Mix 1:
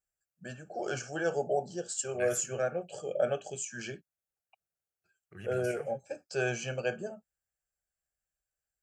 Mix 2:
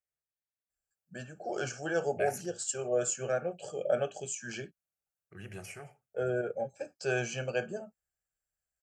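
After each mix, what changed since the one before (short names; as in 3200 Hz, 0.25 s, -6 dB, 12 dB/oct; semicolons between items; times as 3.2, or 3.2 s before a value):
first voice: entry +0.70 s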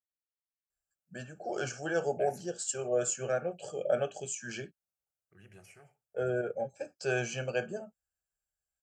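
second voice -11.0 dB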